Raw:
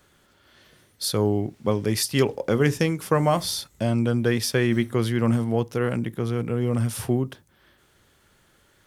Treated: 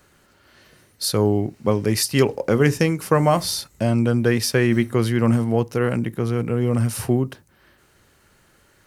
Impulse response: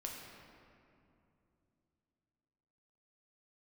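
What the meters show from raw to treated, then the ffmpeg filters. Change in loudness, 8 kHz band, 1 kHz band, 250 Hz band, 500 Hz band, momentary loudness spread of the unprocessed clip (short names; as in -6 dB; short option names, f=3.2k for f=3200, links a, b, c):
+3.5 dB, +3.5 dB, +3.5 dB, +3.5 dB, +3.5 dB, 5 LU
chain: -af "bandreject=f=3.4k:w=7.8,volume=3.5dB"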